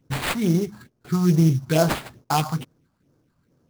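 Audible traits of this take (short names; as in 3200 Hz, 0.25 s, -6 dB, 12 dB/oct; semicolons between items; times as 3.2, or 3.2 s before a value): phasing stages 4, 2.3 Hz, lowest notch 390–3500 Hz; aliases and images of a low sample rate 5900 Hz, jitter 20%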